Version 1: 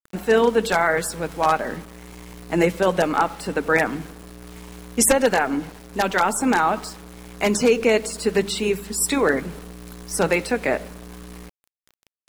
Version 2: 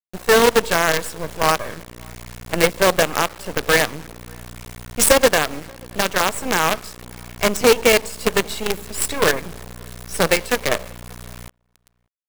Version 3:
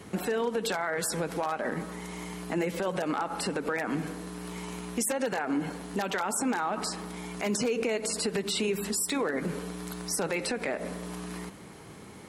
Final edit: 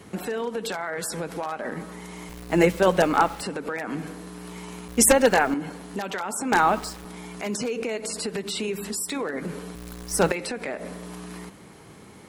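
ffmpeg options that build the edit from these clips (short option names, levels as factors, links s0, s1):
-filter_complex "[0:a]asplit=4[s0][s1][s2][s3];[2:a]asplit=5[s4][s5][s6][s7][s8];[s4]atrim=end=2.292[s9];[s0]atrim=start=2.288:end=3.422[s10];[s5]atrim=start=3.418:end=4.882[s11];[s1]atrim=start=4.878:end=5.542[s12];[s6]atrim=start=5.538:end=6.522[s13];[s2]atrim=start=6.518:end=7.052[s14];[s7]atrim=start=7.048:end=9.752[s15];[s3]atrim=start=9.748:end=10.322[s16];[s8]atrim=start=10.318[s17];[s9][s10]acrossfade=d=0.004:c1=hsin:c2=hsin[s18];[s18][s11]acrossfade=d=0.004:c1=hsin:c2=hsin[s19];[s19][s12]acrossfade=d=0.004:c1=hsin:c2=hsin[s20];[s20][s13]acrossfade=d=0.004:c1=hsin:c2=hsin[s21];[s21][s14]acrossfade=d=0.004:c1=hsin:c2=hsin[s22];[s22][s15]acrossfade=d=0.004:c1=hsin:c2=hsin[s23];[s23][s16]acrossfade=d=0.004:c1=hsin:c2=hsin[s24];[s24][s17]acrossfade=d=0.004:c1=hsin:c2=hsin"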